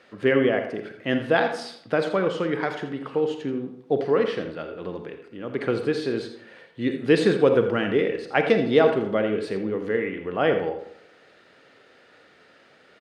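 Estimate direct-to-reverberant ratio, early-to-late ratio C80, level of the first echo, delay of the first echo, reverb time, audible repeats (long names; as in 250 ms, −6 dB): 6.0 dB, 9.0 dB, −12.0 dB, 84 ms, 0.70 s, 1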